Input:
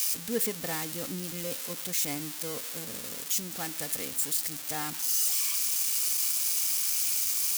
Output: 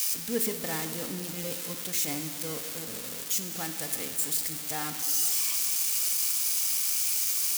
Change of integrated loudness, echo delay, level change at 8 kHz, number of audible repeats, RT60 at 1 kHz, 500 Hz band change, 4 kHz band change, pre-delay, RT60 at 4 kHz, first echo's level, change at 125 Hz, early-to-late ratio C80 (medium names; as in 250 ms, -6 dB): +0.5 dB, no echo, +0.5 dB, no echo, 2.7 s, +0.5 dB, +0.5 dB, 12 ms, 2.2 s, no echo, +1.0 dB, 9.0 dB